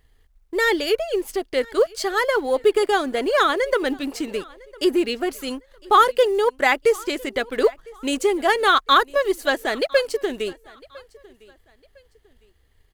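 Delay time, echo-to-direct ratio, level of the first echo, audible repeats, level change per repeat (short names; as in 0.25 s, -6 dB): 1.005 s, -23.5 dB, -24.0 dB, 2, -10.0 dB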